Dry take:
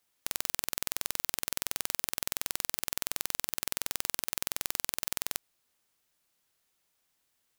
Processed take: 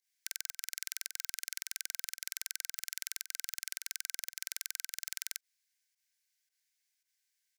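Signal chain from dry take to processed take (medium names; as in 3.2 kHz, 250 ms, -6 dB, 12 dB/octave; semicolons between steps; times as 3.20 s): rippled Chebyshev high-pass 1.5 kHz, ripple 6 dB; volume shaper 111 bpm, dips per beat 1, -13 dB, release 96 ms; spectral gate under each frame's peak -25 dB strong; trim -1.5 dB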